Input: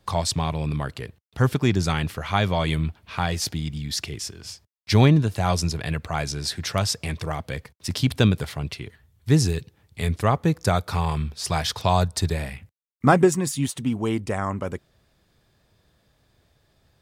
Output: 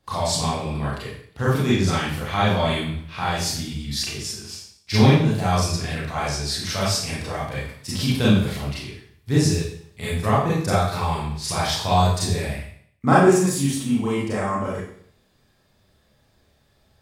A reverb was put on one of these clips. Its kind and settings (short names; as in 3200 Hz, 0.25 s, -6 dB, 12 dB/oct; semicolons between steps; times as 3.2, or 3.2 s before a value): Schroeder reverb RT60 0.59 s, combs from 29 ms, DRR -8.5 dB; gain -6.5 dB